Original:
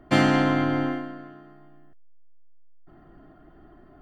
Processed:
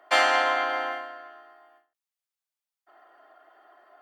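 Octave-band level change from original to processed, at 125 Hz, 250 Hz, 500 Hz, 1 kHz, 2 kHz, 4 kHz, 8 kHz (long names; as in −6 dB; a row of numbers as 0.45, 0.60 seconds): below −40 dB, −22.0 dB, −1.5 dB, +3.5 dB, +4.0 dB, +4.0 dB, can't be measured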